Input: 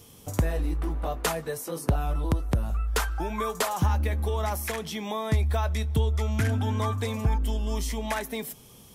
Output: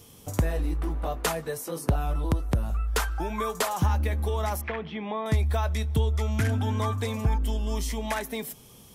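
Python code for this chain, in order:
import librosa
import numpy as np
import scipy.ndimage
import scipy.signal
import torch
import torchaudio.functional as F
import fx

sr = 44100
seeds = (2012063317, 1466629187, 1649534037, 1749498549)

y = fx.lowpass(x, sr, hz=2800.0, slope=24, at=(4.61, 5.26))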